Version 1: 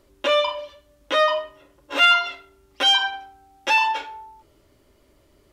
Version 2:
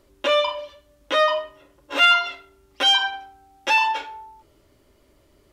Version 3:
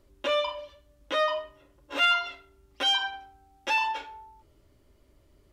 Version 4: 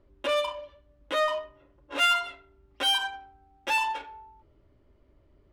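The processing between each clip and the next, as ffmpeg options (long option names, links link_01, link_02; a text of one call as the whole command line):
ffmpeg -i in.wav -af anull out.wav
ffmpeg -i in.wav -af "lowshelf=frequency=160:gain=9,volume=-7.5dB" out.wav
ffmpeg -i in.wav -af "adynamicsmooth=sensitivity=6.5:basefreq=2700" out.wav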